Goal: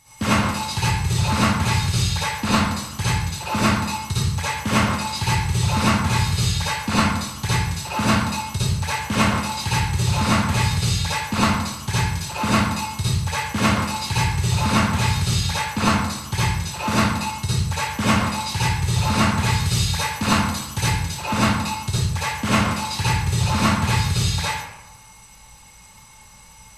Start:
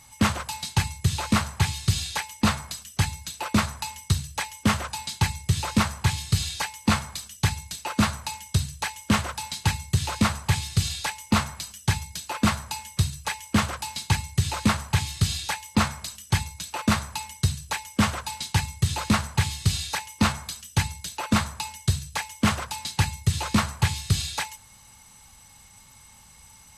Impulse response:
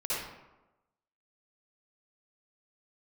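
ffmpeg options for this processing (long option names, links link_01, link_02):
-filter_complex "[0:a]asettb=1/sr,asplit=3[link_01][link_02][link_03];[link_01]atrim=end=19.604[link_04];[link_02]atrim=start=19.6:end=20.92,asetpts=PTS-STARTPTS,afade=type=in:duration=0.004:curve=qsin,afade=type=out:start_time=1.316:duration=0.004:curve=qsin,highshelf=frequency=10000:gain=5.5[link_05];[link_03]atrim=start=20.916[link_06];[link_04][link_05]acrossfade=duration=0.004:curve1=hsin:curve2=qsin[link_07];[link_07][link_06]acrossfade=duration=0.004:curve1=qsin:curve2=hsin[link_08];[1:a]atrim=start_sample=2205[link_09];[link_08][link_09]afir=irnorm=-1:irlink=0"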